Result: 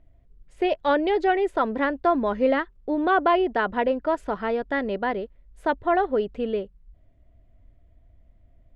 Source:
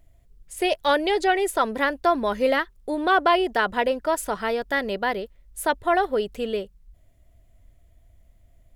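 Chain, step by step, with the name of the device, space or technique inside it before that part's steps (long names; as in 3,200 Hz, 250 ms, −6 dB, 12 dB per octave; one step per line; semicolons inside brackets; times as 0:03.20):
phone in a pocket (low-pass filter 3,800 Hz 12 dB per octave; parametric band 270 Hz +4 dB 0.62 octaves; high-shelf EQ 2,300 Hz −9.5 dB)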